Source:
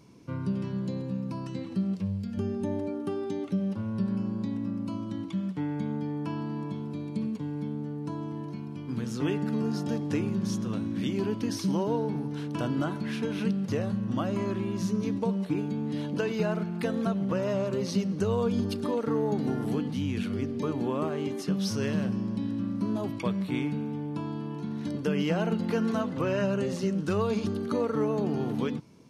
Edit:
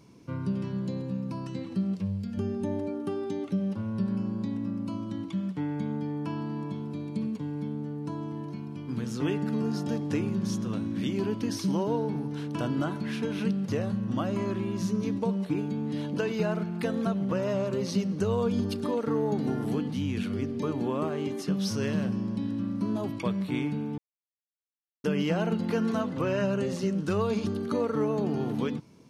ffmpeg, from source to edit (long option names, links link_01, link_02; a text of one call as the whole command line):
ffmpeg -i in.wav -filter_complex "[0:a]asplit=3[link_01][link_02][link_03];[link_01]atrim=end=23.98,asetpts=PTS-STARTPTS,afade=type=out:start_time=23.976:duration=0.004:curve=hsin[link_04];[link_02]atrim=start=23.98:end=25.04,asetpts=PTS-STARTPTS,volume=0[link_05];[link_03]atrim=start=25.04,asetpts=PTS-STARTPTS,afade=type=in:duration=0.004:curve=hsin[link_06];[link_04][link_05][link_06]concat=n=3:v=0:a=1" out.wav